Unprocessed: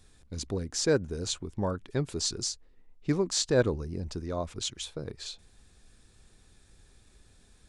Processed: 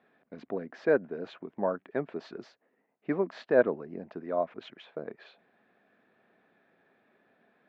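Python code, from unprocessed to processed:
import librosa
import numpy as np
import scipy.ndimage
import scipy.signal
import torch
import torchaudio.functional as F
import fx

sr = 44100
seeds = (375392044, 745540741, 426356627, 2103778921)

y = fx.cabinet(x, sr, low_hz=210.0, low_slope=24, high_hz=2300.0, hz=(320.0, 660.0, 1700.0), db=(-3, 9, 3))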